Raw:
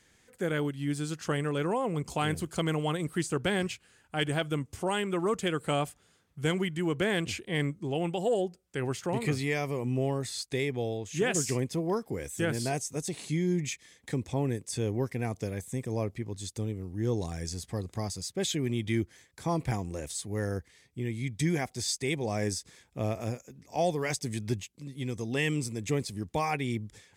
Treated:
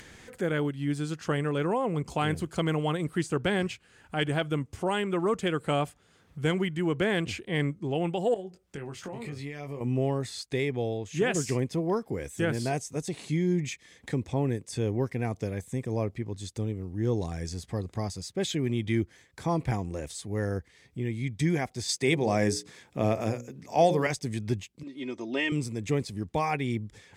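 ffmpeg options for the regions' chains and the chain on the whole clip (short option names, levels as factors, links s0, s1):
-filter_complex "[0:a]asettb=1/sr,asplit=3[s0][s1][s2];[s0]atrim=end=8.344[s3];[s1]atrim=start=8.34:end=9.81,asetpts=PTS-STARTPTS,afade=t=in:d=0.004:c=qsin,afade=t=out:st=1.466:d=0.004:c=qsin,acompressor=threshold=0.0141:ratio=12:attack=3.2:release=140:knee=1:detection=peak,asplit=2[s4][s5];[s5]adelay=21,volume=0.501[s6];[s4][s6]amix=inputs=2:normalize=0,atrim=end_sample=64827[s7];[s2]atrim=start=9.806[s8];[s3][s7]acrossfade=d=0.004:c1=hsin:c2=qsin[s9];[s9][s8]acrossfade=d=0.004:c1=qsin:c2=hsin,asettb=1/sr,asplit=3[s10][s11][s12];[s10]atrim=end=21.894[s13];[s11]atrim=start=21.89:end=24.07,asetpts=PTS-STARTPTS,afade=t=in:d=0.004:c=qsin,afade=t=out:st=2.176:d=0.004:c=qsin,highpass=120,bandreject=f=60:t=h:w=6,bandreject=f=120:t=h:w=6,bandreject=f=180:t=h:w=6,bandreject=f=240:t=h:w=6,bandreject=f=300:t=h:w=6,bandreject=f=360:t=h:w=6,bandreject=f=420:t=h:w=6,bandreject=f=480:t=h:w=6,bandreject=f=540:t=h:w=6,acontrast=24[s14];[s12]atrim=start=24.066[s15];[s13][s14]acrossfade=d=0.004:c1=hsin:c2=qsin[s16];[s16][s15]acrossfade=d=0.004:c1=qsin:c2=hsin,asettb=1/sr,asplit=3[s17][s18][s19];[s17]atrim=end=24.834[s20];[s18]atrim=start=24.83:end=25.52,asetpts=PTS-STARTPTS,afade=t=in:d=0.004:c=qsin,afade=t=out:st=0.686:d=0.004:c=qsin,highpass=300,lowpass=4500,equalizer=f=1700:w=7.6:g=-4.5,aecho=1:1:3.2:0.78,atrim=end_sample=30429[s21];[s19]atrim=start=25.516[s22];[s20][s21]acrossfade=d=0.004:c1=hsin:c2=qsin[s23];[s23][s22]acrossfade=d=0.004:c1=qsin:c2=hsin,acompressor=mode=upward:threshold=0.0126:ratio=2.5,highshelf=f=5300:g=-9,volume=1.26"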